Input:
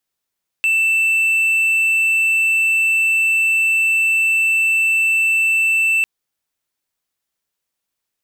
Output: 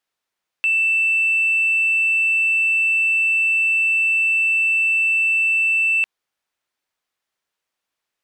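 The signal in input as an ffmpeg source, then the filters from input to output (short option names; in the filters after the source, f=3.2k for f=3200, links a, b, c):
-f lavfi -i "aevalsrc='0.282*(1-4*abs(mod(2660*t+0.25,1)-0.5))':d=5.4:s=44100"
-filter_complex "[0:a]asplit=2[a][b];[b]highpass=f=720:p=1,volume=9dB,asoftclip=type=tanh:threshold=-11dB[c];[a][c]amix=inputs=2:normalize=0,lowpass=f=2.4k:p=1,volume=-6dB"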